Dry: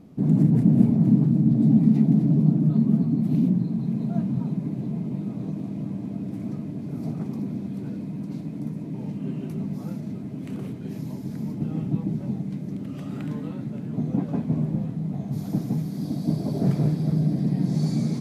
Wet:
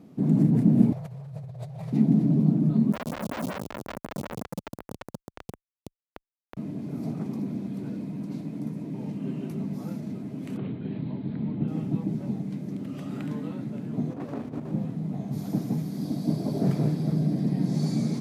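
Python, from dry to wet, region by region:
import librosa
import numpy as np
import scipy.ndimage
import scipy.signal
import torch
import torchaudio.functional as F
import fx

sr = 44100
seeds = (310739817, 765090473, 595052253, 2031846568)

y = fx.chain(x, sr, fx.cheby1_bandstop(low_hz=130.0, high_hz=520.0, order=3),
    fx.over_compress(threshold_db=-34.0, ratio=-1.0), at=(0.92, 1.93))
y = fx.chain(y, sr, fx.schmitt(flips_db=-22.0),
    fx.stagger_phaser(hz=5.4), at=(2.92, 6.57))
y = fx.chain(y, sr, fx.steep_lowpass(hz=4100.0, slope=72),
    fx.low_shelf(hz=110.0, db=8.5), at=(10.57, 11.68))
y = fx.chain(y, sr, fx.over_compress(threshold_db=-25.0, ratio=-0.5),
    fx.peak_eq(hz=180.0, db=-13.5, octaves=0.62),
    fx.running_max(window=17), at=(14.1, 14.72))
y = scipy.signal.sosfilt(scipy.signal.butter(2, 120.0, 'highpass', fs=sr, output='sos'), y)
y = fx.peak_eq(y, sr, hz=160.0, db=-2.0, octaves=0.77)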